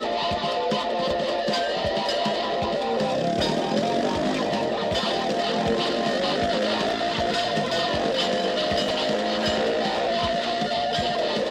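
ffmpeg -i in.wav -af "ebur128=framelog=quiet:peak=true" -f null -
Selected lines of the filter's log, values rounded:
Integrated loudness:
  I:         -23.9 LUFS
  Threshold: -33.9 LUFS
Loudness range:
  LRA:         0.9 LU
  Threshold: -43.8 LUFS
  LRA low:   -24.3 LUFS
  LRA high:  -23.5 LUFS
True peak:
  Peak:      -10.4 dBFS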